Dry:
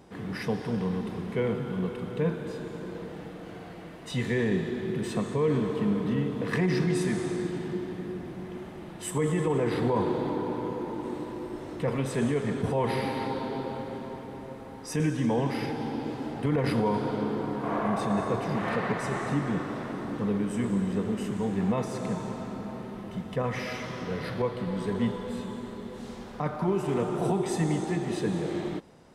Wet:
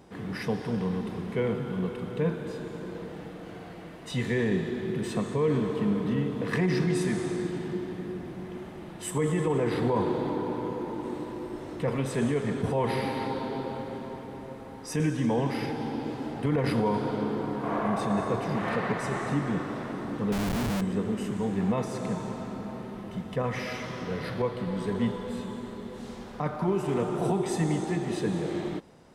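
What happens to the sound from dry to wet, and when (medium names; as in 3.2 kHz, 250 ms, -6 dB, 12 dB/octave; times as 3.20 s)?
20.32–20.81 s: Schmitt trigger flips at -30.5 dBFS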